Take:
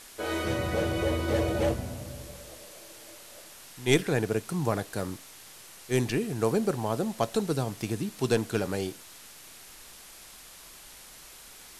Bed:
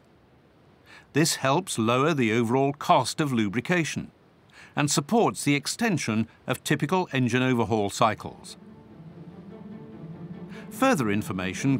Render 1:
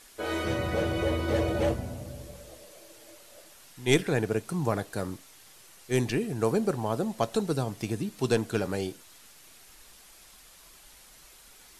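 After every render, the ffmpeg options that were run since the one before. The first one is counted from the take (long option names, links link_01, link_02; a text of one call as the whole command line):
ffmpeg -i in.wav -af "afftdn=noise_reduction=6:noise_floor=-49" out.wav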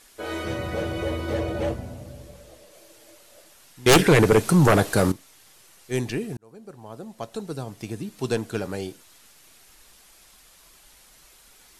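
ffmpeg -i in.wav -filter_complex "[0:a]asettb=1/sr,asplit=3[link_01][link_02][link_03];[link_01]atrim=end=1.344[link_04];[link_02]atrim=start=1.34:end=2.74,asetpts=PTS-STARTPTS,afade=type=in:duration=0.004:curve=qsin,afade=type=out:start_time=1.396:duration=0.004:curve=qsin,highshelf=frequency=5400:gain=-4[link_05];[link_03]atrim=start=2.736[link_06];[link_04][link_05]acrossfade=duration=0.004:curve1=hsin:curve2=qsin[link_07];[link_07][link_06]acrossfade=duration=0.004:curve1=qsin:curve2=hsin,asettb=1/sr,asplit=3[link_08][link_09][link_10];[link_08]atrim=end=3.864[link_11];[link_09]atrim=start=3.86:end=5.12,asetpts=PTS-STARTPTS,afade=type=in:duration=0.004:curve=qsin,afade=type=out:start_time=1.256:duration=0.004:curve=qsin,aeval=exprs='0.335*sin(PI/2*3.55*val(0)/0.335)':channel_layout=same[link_12];[link_10]atrim=start=5.116[link_13];[link_11][link_12]acrossfade=duration=0.004:curve1=hsin:curve2=qsin[link_14];[link_14][link_13]acrossfade=duration=0.004:curve1=qsin:curve2=hsin,asplit=2[link_15][link_16];[link_15]atrim=end=6.37,asetpts=PTS-STARTPTS,afade=type=out:start_time=6.366:duration=0.004:curve=hsin[link_17];[link_16]atrim=start=6.37,asetpts=PTS-STARTPTS,afade=type=in:duration=1.87[link_18];[link_17][link_18]concat=n=2:v=0:a=1" out.wav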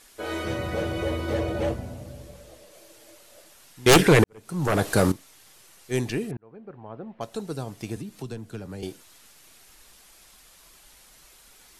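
ffmpeg -i in.wav -filter_complex "[0:a]asettb=1/sr,asplit=3[link_01][link_02][link_03];[link_01]atrim=end=6.314[link_04];[link_02]atrim=start=6.31:end=7.21,asetpts=PTS-STARTPTS,afade=type=in:duration=0.004:curve=qsin,afade=type=out:start_time=0.896:duration=0.004:curve=qsin,lowpass=frequency=2600:width=0.5412,lowpass=frequency=2600:width=1.3066[link_05];[link_03]atrim=start=7.206[link_06];[link_04][link_05]acrossfade=duration=0.004:curve1=hsin:curve2=qsin[link_07];[link_07][link_06]acrossfade=duration=0.004:curve1=qsin:curve2=hsin,asettb=1/sr,asplit=3[link_08][link_09][link_10];[link_08]atrim=end=7.964[link_11];[link_09]atrim=start=7.96:end=8.83,asetpts=PTS-STARTPTS,afade=type=in:duration=0.004:curve=qsin,afade=type=out:start_time=0.866:duration=0.004:curve=qsin,acrossover=split=110|230[link_12][link_13][link_14];[link_12]acompressor=threshold=-42dB:ratio=4[link_15];[link_13]acompressor=threshold=-39dB:ratio=4[link_16];[link_14]acompressor=threshold=-41dB:ratio=4[link_17];[link_15][link_16][link_17]amix=inputs=3:normalize=0[link_18];[link_10]atrim=start=8.826[link_19];[link_11][link_18]acrossfade=duration=0.004:curve1=hsin:curve2=qsin[link_20];[link_20][link_19]acrossfade=duration=0.004:curve1=qsin:curve2=hsin,asplit=2[link_21][link_22];[link_21]atrim=end=4.24,asetpts=PTS-STARTPTS,afade=type=out:start_time=4.236:duration=0.004:curve=hsin[link_23];[link_22]atrim=start=4.24,asetpts=PTS-STARTPTS,afade=type=in:duration=0.68:curve=qua[link_24];[link_23][link_24]concat=n=2:v=0:a=1" out.wav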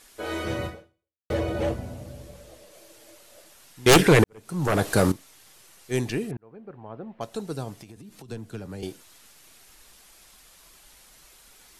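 ffmpeg -i in.wav -filter_complex "[0:a]asplit=3[link_01][link_02][link_03];[link_01]afade=type=out:start_time=7.76:duration=0.02[link_04];[link_02]acompressor=threshold=-41dB:ratio=8:attack=3.2:release=140:knee=1:detection=peak,afade=type=in:start_time=7.76:duration=0.02,afade=type=out:start_time=8.28:duration=0.02[link_05];[link_03]afade=type=in:start_time=8.28:duration=0.02[link_06];[link_04][link_05][link_06]amix=inputs=3:normalize=0,asplit=2[link_07][link_08];[link_07]atrim=end=1.3,asetpts=PTS-STARTPTS,afade=type=out:start_time=0.66:duration=0.64:curve=exp[link_09];[link_08]atrim=start=1.3,asetpts=PTS-STARTPTS,afade=type=in:duration=0.004:curve=hsin[link_10];[link_09][link_10]concat=n=2:v=0:a=1" out.wav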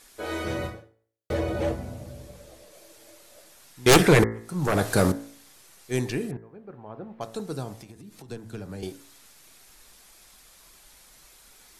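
ffmpeg -i in.wav -af "equalizer=frequency=2900:width=6.4:gain=-3.5,bandreject=frequency=55.99:width_type=h:width=4,bandreject=frequency=111.98:width_type=h:width=4,bandreject=frequency=167.97:width_type=h:width=4,bandreject=frequency=223.96:width_type=h:width=4,bandreject=frequency=279.95:width_type=h:width=4,bandreject=frequency=335.94:width_type=h:width=4,bandreject=frequency=391.93:width_type=h:width=4,bandreject=frequency=447.92:width_type=h:width=4,bandreject=frequency=503.91:width_type=h:width=4,bandreject=frequency=559.9:width_type=h:width=4,bandreject=frequency=615.89:width_type=h:width=4,bandreject=frequency=671.88:width_type=h:width=4,bandreject=frequency=727.87:width_type=h:width=4,bandreject=frequency=783.86:width_type=h:width=4,bandreject=frequency=839.85:width_type=h:width=4,bandreject=frequency=895.84:width_type=h:width=4,bandreject=frequency=951.83:width_type=h:width=4,bandreject=frequency=1007.82:width_type=h:width=4,bandreject=frequency=1063.81:width_type=h:width=4,bandreject=frequency=1119.8:width_type=h:width=4,bandreject=frequency=1175.79:width_type=h:width=4,bandreject=frequency=1231.78:width_type=h:width=4,bandreject=frequency=1287.77:width_type=h:width=4,bandreject=frequency=1343.76:width_type=h:width=4,bandreject=frequency=1399.75:width_type=h:width=4,bandreject=frequency=1455.74:width_type=h:width=4,bandreject=frequency=1511.73:width_type=h:width=4,bandreject=frequency=1567.72:width_type=h:width=4,bandreject=frequency=1623.71:width_type=h:width=4,bandreject=frequency=1679.7:width_type=h:width=4,bandreject=frequency=1735.69:width_type=h:width=4,bandreject=frequency=1791.68:width_type=h:width=4,bandreject=frequency=1847.67:width_type=h:width=4,bandreject=frequency=1903.66:width_type=h:width=4,bandreject=frequency=1959.65:width_type=h:width=4,bandreject=frequency=2015.64:width_type=h:width=4,bandreject=frequency=2071.63:width_type=h:width=4,bandreject=frequency=2127.62:width_type=h:width=4,bandreject=frequency=2183.61:width_type=h:width=4" out.wav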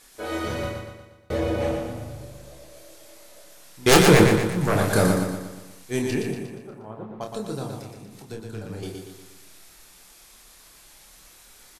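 ffmpeg -i in.wav -filter_complex "[0:a]asplit=2[link_01][link_02];[link_02]adelay=28,volume=-5dB[link_03];[link_01][link_03]amix=inputs=2:normalize=0,aecho=1:1:119|238|357|476|595|714:0.562|0.287|0.146|0.0746|0.038|0.0194" out.wav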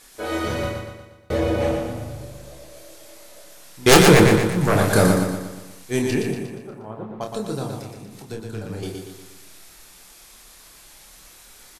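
ffmpeg -i in.wav -af "volume=3.5dB,alimiter=limit=-2dB:level=0:latency=1" out.wav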